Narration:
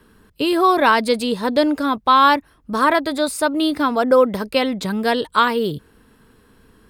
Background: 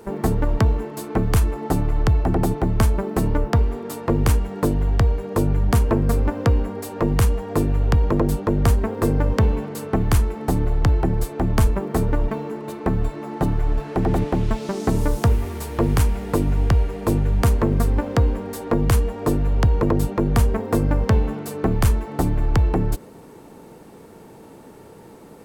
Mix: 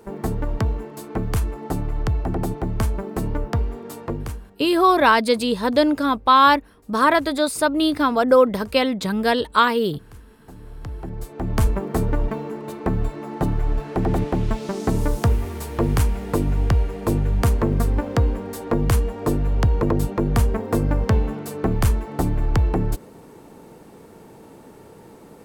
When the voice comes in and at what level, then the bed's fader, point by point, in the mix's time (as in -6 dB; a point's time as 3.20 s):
4.20 s, -0.5 dB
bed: 4.02 s -4.5 dB
4.73 s -27 dB
10.27 s -27 dB
11.66 s -1 dB